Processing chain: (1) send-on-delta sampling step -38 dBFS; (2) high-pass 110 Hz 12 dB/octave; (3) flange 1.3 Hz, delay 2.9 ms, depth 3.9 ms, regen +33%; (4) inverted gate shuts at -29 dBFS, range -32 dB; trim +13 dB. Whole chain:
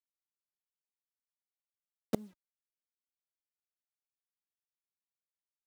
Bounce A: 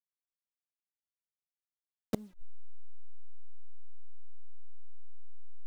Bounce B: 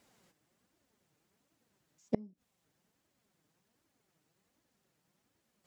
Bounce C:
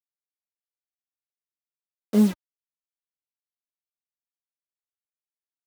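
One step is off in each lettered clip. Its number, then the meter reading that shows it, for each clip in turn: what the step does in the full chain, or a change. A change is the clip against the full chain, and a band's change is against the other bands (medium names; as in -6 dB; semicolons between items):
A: 2, 125 Hz band +4.0 dB; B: 1, distortion -4 dB; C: 4, momentary loudness spread change -6 LU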